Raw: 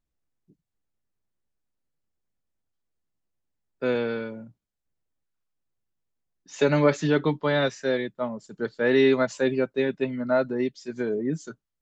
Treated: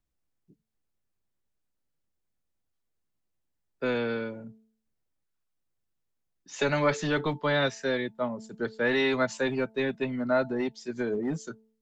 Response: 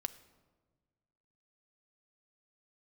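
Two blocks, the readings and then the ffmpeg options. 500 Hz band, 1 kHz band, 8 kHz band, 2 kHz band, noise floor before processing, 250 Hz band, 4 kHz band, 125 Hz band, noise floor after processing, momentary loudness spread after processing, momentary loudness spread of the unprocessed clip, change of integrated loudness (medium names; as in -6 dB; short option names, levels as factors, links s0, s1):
-5.0 dB, -0.5 dB, no reading, 0.0 dB, -83 dBFS, -4.5 dB, 0.0 dB, -4.5 dB, -80 dBFS, 10 LU, 13 LU, -3.5 dB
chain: -filter_complex "[0:a]bandreject=f=220.5:t=h:w=4,bandreject=f=441:t=h:w=4,bandreject=f=661.5:t=h:w=4,bandreject=f=882:t=h:w=4,acrossover=split=310|640|2800[s0][s1][s2][s3];[s0]asoftclip=type=hard:threshold=0.0299[s4];[s1]acompressor=threshold=0.0224:ratio=6[s5];[s4][s5][s2][s3]amix=inputs=4:normalize=0"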